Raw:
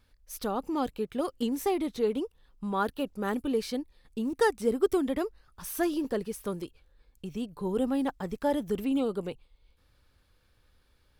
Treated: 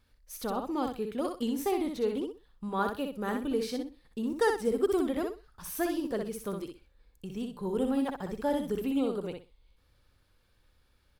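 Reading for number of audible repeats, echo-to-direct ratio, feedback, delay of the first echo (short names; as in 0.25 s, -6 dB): 3, -5.0 dB, 21%, 62 ms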